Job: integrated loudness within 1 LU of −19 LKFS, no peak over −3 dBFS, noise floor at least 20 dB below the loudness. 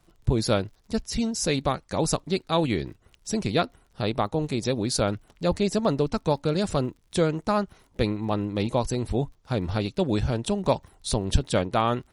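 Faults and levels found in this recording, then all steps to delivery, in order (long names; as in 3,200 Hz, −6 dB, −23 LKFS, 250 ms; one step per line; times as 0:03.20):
crackle rate 43 per second; integrated loudness −26.5 LKFS; sample peak −7.0 dBFS; target loudness −19.0 LKFS
→ click removal
level +7.5 dB
brickwall limiter −3 dBFS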